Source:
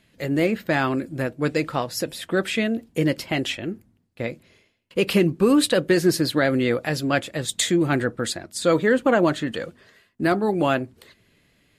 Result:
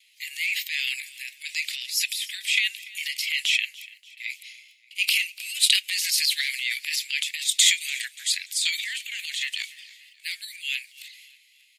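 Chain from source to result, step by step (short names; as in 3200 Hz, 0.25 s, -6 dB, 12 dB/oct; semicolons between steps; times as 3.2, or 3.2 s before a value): gate with hold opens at -52 dBFS; steep high-pass 2100 Hz 72 dB/oct; transient shaper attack -2 dB, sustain +12 dB; feedback echo 0.29 s, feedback 45%, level -20.5 dB; gain +6 dB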